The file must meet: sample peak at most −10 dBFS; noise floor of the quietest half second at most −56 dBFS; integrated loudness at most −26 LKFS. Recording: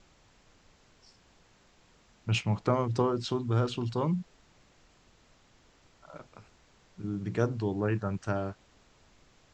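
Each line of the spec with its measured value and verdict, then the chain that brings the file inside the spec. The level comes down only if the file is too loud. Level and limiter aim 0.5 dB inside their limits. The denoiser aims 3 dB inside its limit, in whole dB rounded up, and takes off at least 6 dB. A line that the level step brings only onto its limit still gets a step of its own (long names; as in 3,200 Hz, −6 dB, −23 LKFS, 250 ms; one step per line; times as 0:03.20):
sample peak −12.5 dBFS: in spec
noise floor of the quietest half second −63 dBFS: in spec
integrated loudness −31.0 LKFS: in spec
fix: no processing needed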